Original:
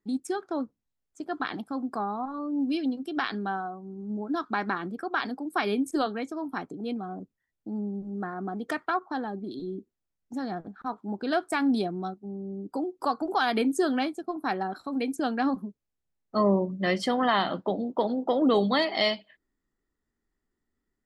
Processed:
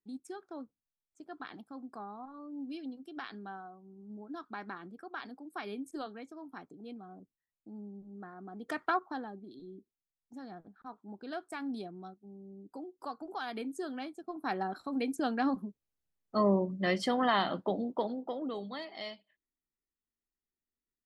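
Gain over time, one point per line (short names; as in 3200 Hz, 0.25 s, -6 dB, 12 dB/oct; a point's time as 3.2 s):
8.49 s -13.5 dB
8.88 s -1.5 dB
9.46 s -13.5 dB
13.98 s -13.5 dB
14.6 s -4 dB
17.87 s -4 dB
18.57 s -17 dB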